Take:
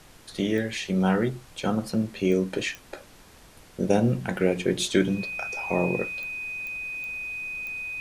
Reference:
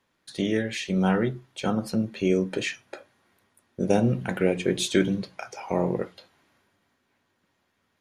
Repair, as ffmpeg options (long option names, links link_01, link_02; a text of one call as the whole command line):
ffmpeg -i in.wav -af "adeclick=threshold=4,bandreject=frequency=2500:width=30,afftdn=noise_reduction=22:noise_floor=-51" out.wav